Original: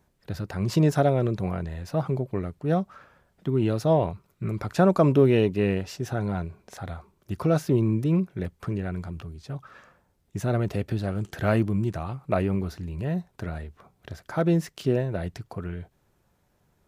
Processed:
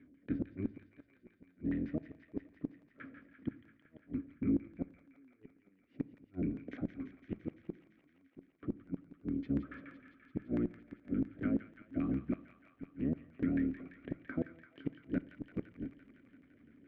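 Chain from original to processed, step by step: octaver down 1 oct, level +3 dB; limiter -15 dBFS, peak gain reduction 9 dB; reverse; compressor 10:1, threshold -31 dBFS, peak gain reduction 13 dB; reverse; vowel filter i; LFO low-pass saw down 7 Hz 520–1800 Hz; flipped gate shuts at -41 dBFS, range -42 dB; thin delay 0.17 s, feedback 79%, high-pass 1500 Hz, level -8 dB; on a send at -17.5 dB: reverb RT60 0.60 s, pre-delay 4 ms; on the sum: gain +17.5 dB

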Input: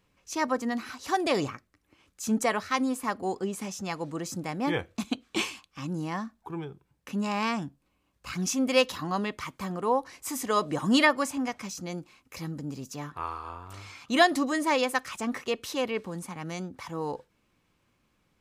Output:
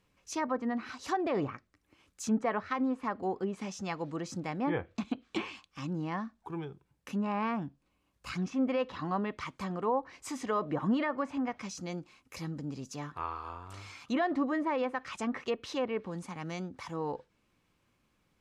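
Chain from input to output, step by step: limiter -17.5 dBFS, peak gain reduction 9 dB; treble ducked by the level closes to 1700 Hz, closed at -25.5 dBFS; gain -2.5 dB

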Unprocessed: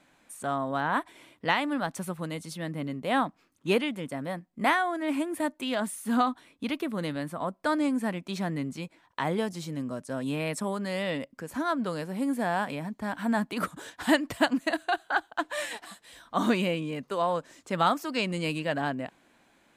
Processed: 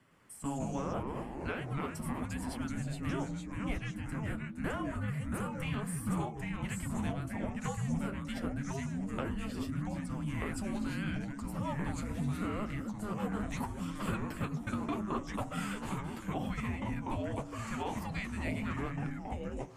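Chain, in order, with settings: bell 6900 Hz -12 dB 0.23 oct; notch 4200 Hz, Q 5.7; de-hum 111.5 Hz, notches 17; compressor, threshold -30 dBFS, peak gain reduction 12 dB; echoes that change speed 0.11 s, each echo -2 st, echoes 3; flange 0.79 Hz, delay 6.1 ms, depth 8.9 ms, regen -37%; frequency shift -420 Hz

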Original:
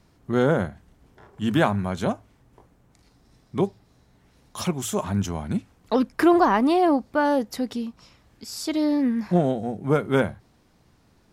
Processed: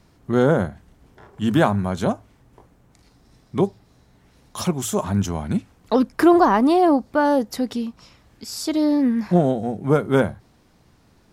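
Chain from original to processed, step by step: dynamic EQ 2400 Hz, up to -5 dB, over -41 dBFS, Q 1.2; gain +3.5 dB

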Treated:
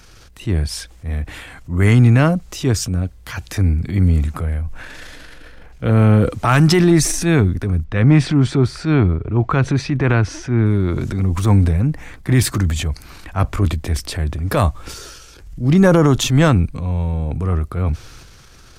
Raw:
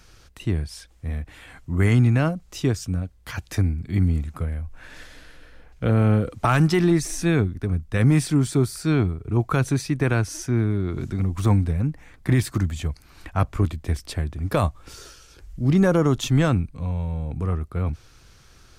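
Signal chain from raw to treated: transient shaper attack -5 dB, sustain +6 dB; 7.84–10.66 LPF 3300 Hz 12 dB/oct; gain +6.5 dB

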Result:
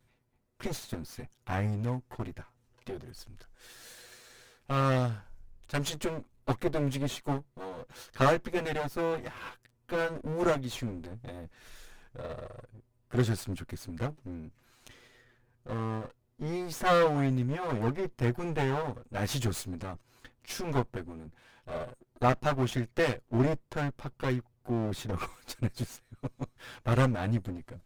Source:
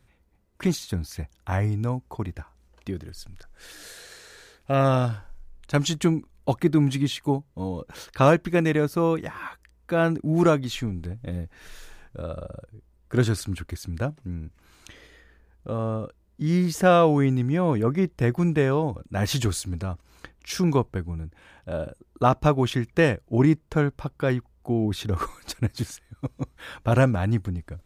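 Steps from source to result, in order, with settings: minimum comb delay 8.1 ms; gain -5.5 dB

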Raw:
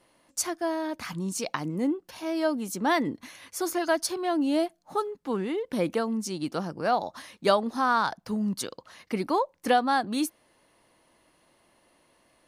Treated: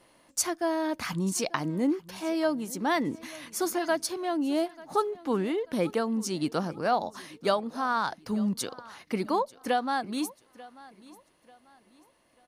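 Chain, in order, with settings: vocal rider within 5 dB 0.5 s; feedback echo 0.89 s, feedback 34%, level -20.5 dB; gain -1 dB

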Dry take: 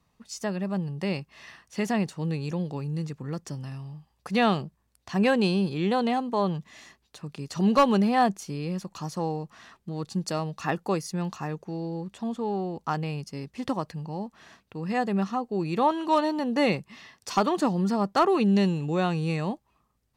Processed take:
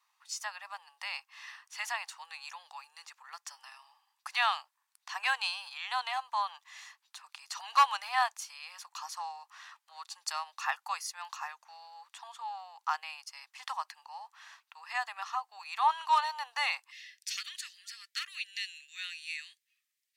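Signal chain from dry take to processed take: steep high-pass 850 Hz 48 dB/oct, from 16.9 s 1800 Hz

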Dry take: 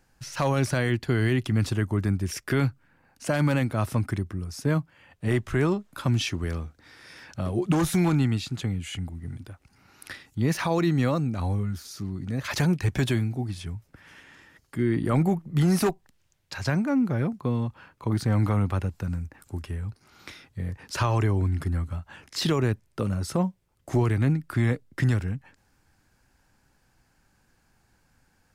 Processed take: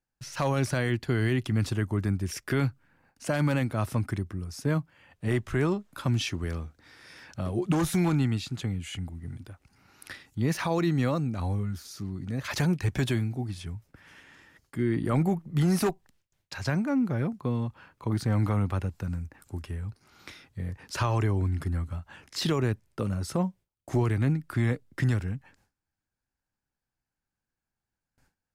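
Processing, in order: gate with hold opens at -52 dBFS; gain -2.5 dB

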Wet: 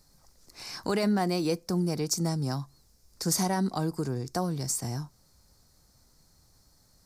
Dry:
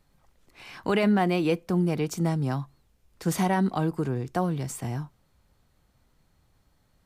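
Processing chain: resonant high shelf 3900 Hz +8.5 dB, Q 3; in parallel at +1 dB: compressor, threshold -38 dBFS, peak gain reduction 17.5 dB; on the sum: gain -5 dB

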